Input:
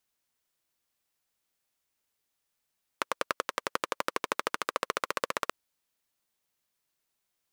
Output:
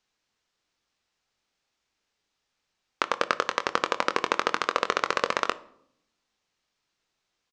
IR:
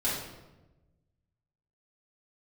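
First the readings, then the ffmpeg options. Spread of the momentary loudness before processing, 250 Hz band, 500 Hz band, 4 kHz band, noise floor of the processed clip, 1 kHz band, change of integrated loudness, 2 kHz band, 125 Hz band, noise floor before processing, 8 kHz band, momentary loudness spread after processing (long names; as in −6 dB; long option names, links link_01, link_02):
3 LU, +6.5 dB, +6.5 dB, +6.5 dB, −81 dBFS, +6.5 dB, +6.5 dB, +6.5 dB, +5.5 dB, −82 dBFS, +1.0 dB, 5 LU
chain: -filter_complex "[0:a]lowpass=frequency=6200:width=0.5412,lowpass=frequency=6200:width=1.3066,asplit=2[link_01][link_02];[link_02]adelay=23,volume=-10dB[link_03];[link_01][link_03]amix=inputs=2:normalize=0,asplit=2[link_04][link_05];[1:a]atrim=start_sample=2205,asetrate=79380,aresample=44100[link_06];[link_05][link_06]afir=irnorm=-1:irlink=0,volume=-17dB[link_07];[link_04][link_07]amix=inputs=2:normalize=0,volume=5.5dB"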